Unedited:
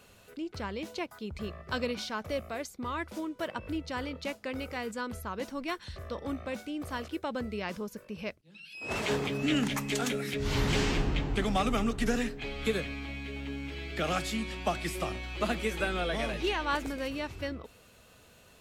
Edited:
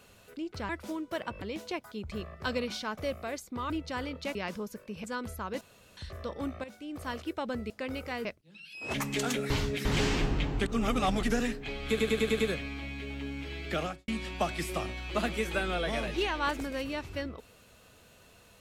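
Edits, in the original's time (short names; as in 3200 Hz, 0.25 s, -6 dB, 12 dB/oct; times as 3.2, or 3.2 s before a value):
2.97–3.7 move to 0.69
4.35–4.9 swap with 7.56–8.25
5.47–5.83 room tone
6.5–6.98 fade in linear, from -12.5 dB
8.94–9.7 cut
10.26–10.61 reverse
11.42–11.99 reverse
12.65 stutter 0.10 s, 6 plays
13.99–14.34 studio fade out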